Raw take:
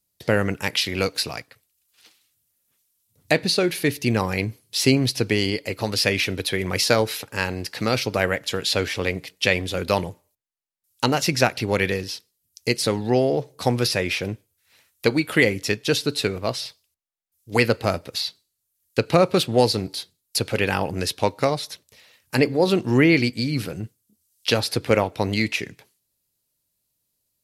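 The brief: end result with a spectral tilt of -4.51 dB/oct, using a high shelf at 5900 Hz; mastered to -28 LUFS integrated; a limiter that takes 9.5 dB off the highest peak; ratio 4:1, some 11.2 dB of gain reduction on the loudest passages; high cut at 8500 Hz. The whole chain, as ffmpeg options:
-af "lowpass=8.5k,highshelf=f=5.9k:g=-4.5,acompressor=threshold=-26dB:ratio=4,volume=4.5dB,alimiter=limit=-16dB:level=0:latency=1"

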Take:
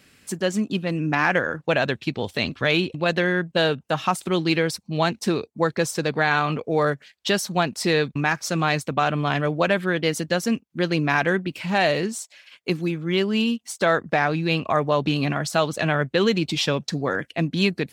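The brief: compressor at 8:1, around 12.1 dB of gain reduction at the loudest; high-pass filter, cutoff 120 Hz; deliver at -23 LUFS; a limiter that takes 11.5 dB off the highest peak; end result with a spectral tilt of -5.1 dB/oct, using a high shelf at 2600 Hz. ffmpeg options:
-af "highpass=120,highshelf=f=2.6k:g=-6,acompressor=threshold=-29dB:ratio=8,volume=14.5dB,alimiter=limit=-12dB:level=0:latency=1"

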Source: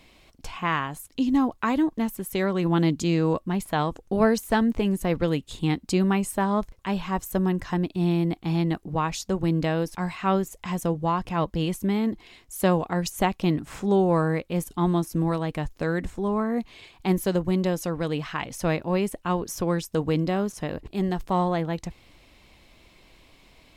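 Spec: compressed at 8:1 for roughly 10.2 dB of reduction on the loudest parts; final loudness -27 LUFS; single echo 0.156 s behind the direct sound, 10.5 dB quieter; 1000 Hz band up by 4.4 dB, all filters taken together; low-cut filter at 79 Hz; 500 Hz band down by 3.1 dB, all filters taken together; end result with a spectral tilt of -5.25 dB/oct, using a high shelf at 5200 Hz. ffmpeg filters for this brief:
-af "highpass=79,equalizer=f=500:t=o:g=-6,equalizer=f=1k:t=o:g=7,highshelf=f=5.2k:g=3,acompressor=threshold=-27dB:ratio=8,aecho=1:1:156:0.299,volume=5dB"

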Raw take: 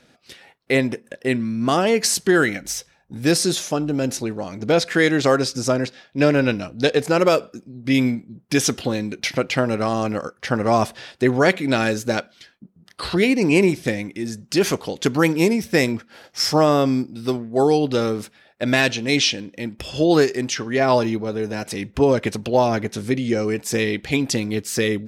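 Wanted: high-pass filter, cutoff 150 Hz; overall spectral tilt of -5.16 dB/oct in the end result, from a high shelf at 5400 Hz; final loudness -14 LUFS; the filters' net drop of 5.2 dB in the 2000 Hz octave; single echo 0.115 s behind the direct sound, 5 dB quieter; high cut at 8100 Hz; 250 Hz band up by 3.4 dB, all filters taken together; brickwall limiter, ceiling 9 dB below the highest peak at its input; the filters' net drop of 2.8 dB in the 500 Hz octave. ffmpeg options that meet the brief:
-af "highpass=150,lowpass=8.1k,equalizer=f=250:t=o:g=6.5,equalizer=f=500:t=o:g=-5.5,equalizer=f=2k:t=o:g=-5.5,highshelf=f=5.4k:g=-6.5,alimiter=limit=-13.5dB:level=0:latency=1,aecho=1:1:115:0.562,volume=9dB"

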